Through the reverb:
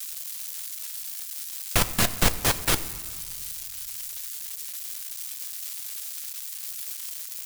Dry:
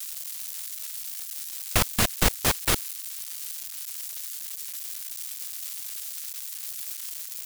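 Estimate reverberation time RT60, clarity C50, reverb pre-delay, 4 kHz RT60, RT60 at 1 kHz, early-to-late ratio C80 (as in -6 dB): 1.8 s, 14.5 dB, 6 ms, 1.0 s, 1.9 s, 15.5 dB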